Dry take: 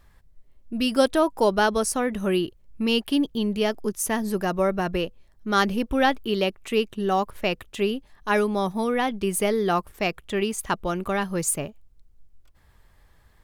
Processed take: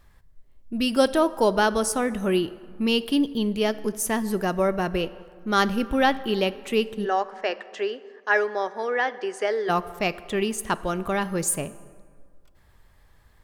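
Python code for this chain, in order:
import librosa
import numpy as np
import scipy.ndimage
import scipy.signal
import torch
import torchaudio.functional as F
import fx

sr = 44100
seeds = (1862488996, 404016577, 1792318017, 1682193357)

y = fx.cabinet(x, sr, low_hz=380.0, low_slope=24, high_hz=6100.0, hz=(1100.0, 1700.0, 2500.0, 3700.0), db=(-4, 9, -6, -8), at=(7.04, 9.68), fade=0.02)
y = fx.rev_plate(y, sr, seeds[0], rt60_s=2.0, hf_ratio=0.5, predelay_ms=0, drr_db=15.0)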